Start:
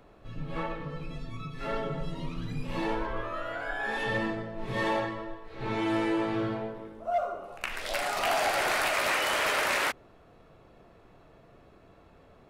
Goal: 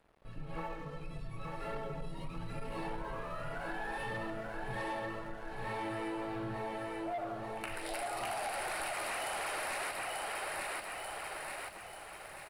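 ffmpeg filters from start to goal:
ffmpeg -i in.wav -af "bandreject=frequency=3400:width=10,aecho=1:1:888|1776|2664|3552|4440|5328:0.531|0.271|0.138|0.0704|0.0359|0.0183,aphaser=in_gain=1:out_gain=1:delay=4.7:decay=0.25:speed=1.7:type=triangular,equalizer=frequency=250:width_type=o:width=0.33:gain=-6,equalizer=frequency=800:width_type=o:width=0.33:gain=5,equalizer=frequency=6300:width_type=o:width=0.33:gain=-12,equalizer=frequency=12500:width_type=o:width=0.33:gain=-6,asoftclip=type=tanh:threshold=-23dB,equalizer=frequency=10000:width=2.2:gain=13.5,aeval=exprs='sgn(val(0))*max(abs(val(0))-0.00211,0)':channel_layout=same,acompressor=threshold=-31dB:ratio=6,volume=-4.5dB" out.wav

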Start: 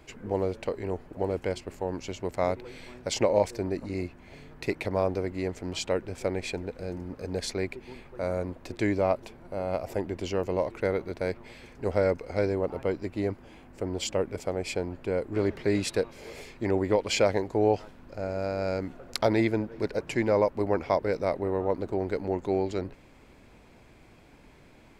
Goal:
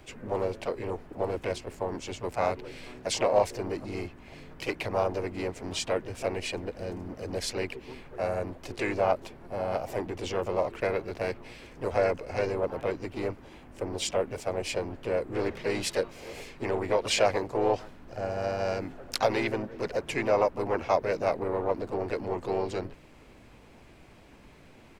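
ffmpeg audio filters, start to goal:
ffmpeg -i in.wav -filter_complex "[0:a]acrossover=split=440|5400[link_01][link_02][link_03];[link_01]asoftclip=type=tanh:threshold=-35dB[link_04];[link_04][link_02][link_03]amix=inputs=3:normalize=0,asplit=3[link_05][link_06][link_07];[link_06]asetrate=33038,aresample=44100,atempo=1.33484,volume=-16dB[link_08];[link_07]asetrate=52444,aresample=44100,atempo=0.840896,volume=-5dB[link_09];[link_05][link_08][link_09]amix=inputs=3:normalize=0" out.wav

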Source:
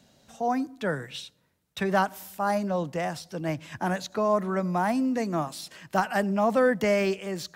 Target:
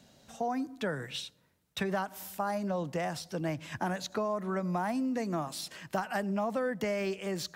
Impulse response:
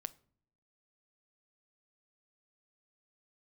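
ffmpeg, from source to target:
-af "acompressor=threshold=-29dB:ratio=6"

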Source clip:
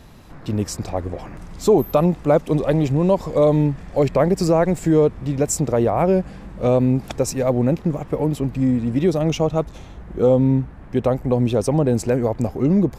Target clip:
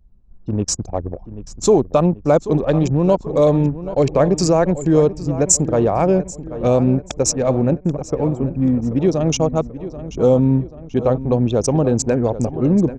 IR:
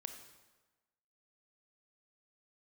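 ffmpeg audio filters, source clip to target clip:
-filter_complex "[0:a]lowpass=frequency=6700:width_type=q:width=3.6,bandreject=frequency=2000:width=9.5,anlmdn=398,asplit=2[link_01][link_02];[link_02]adelay=785,lowpass=frequency=3400:poles=1,volume=-13.5dB,asplit=2[link_03][link_04];[link_04]adelay=785,lowpass=frequency=3400:poles=1,volume=0.5,asplit=2[link_05][link_06];[link_06]adelay=785,lowpass=frequency=3400:poles=1,volume=0.5,asplit=2[link_07][link_08];[link_08]adelay=785,lowpass=frequency=3400:poles=1,volume=0.5,asplit=2[link_09][link_10];[link_10]adelay=785,lowpass=frequency=3400:poles=1,volume=0.5[link_11];[link_03][link_05][link_07][link_09][link_11]amix=inputs=5:normalize=0[link_12];[link_01][link_12]amix=inputs=2:normalize=0,volume=1.5dB"

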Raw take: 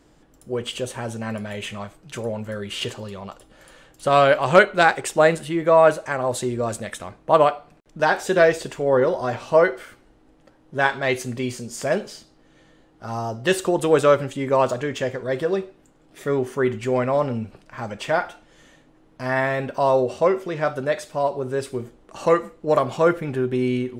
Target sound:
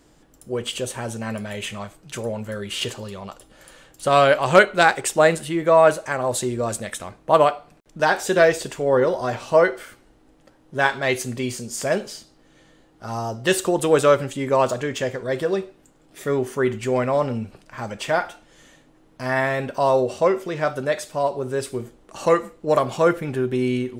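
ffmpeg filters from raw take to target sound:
ffmpeg -i in.wav -af "highshelf=frequency=5000:gain=6.5" out.wav

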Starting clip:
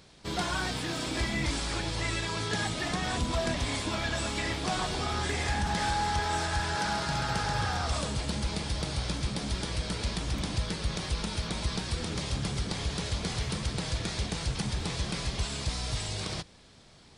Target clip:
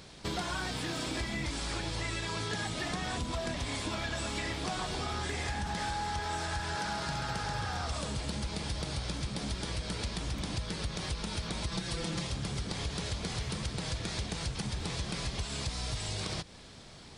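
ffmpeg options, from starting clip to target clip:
ffmpeg -i in.wav -filter_complex "[0:a]asettb=1/sr,asplit=3[link_01][link_02][link_03];[link_01]atrim=end=11.714[link_04];[link_02]atrim=start=11.71:end=12.27,asetpts=PTS-STARTPTS,afade=type=in:duration=0.004:curve=qsin,afade=type=out:start_time=0.556:duration=0.004:curve=qsin,aecho=1:1:5.9:0.99,atrim=end_sample=24696[link_05];[link_03]atrim=start=12.266[link_06];[link_04][link_05]acrossfade=duration=0.004:curve1=hsin:curve2=qsin[link_07];[link_07][link_06]acrossfade=duration=0.004:curve1=qsin:curve2=hsin,acompressor=threshold=-38dB:ratio=5,volume=5dB" out.wav

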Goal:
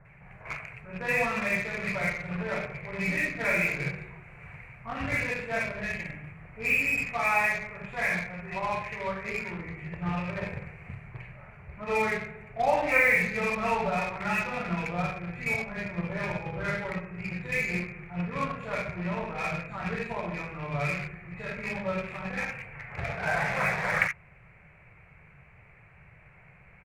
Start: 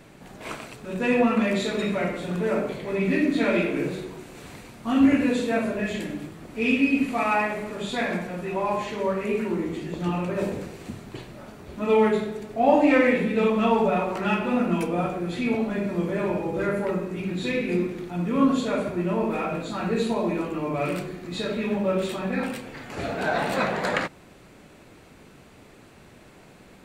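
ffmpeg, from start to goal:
ffmpeg -i in.wav -filter_complex "[0:a]firequalizer=gain_entry='entry(150,0);entry(250,-25);entry(460,-12);entry(720,-7);entry(2300,6);entry(3400,-27)':delay=0.05:min_phase=1,acrossover=split=1500[link_01][link_02];[link_02]adelay=50[link_03];[link_01][link_03]amix=inputs=2:normalize=0,asplit=2[link_04][link_05];[link_05]acrusher=bits=4:mix=0:aa=0.5,volume=-7.5dB[link_06];[link_04][link_06]amix=inputs=2:normalize=0" out.wav

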